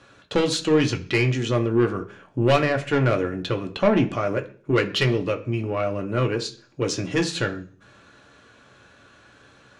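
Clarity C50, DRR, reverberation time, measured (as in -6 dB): 15.0 dB, 3.5 dB, 0.40 s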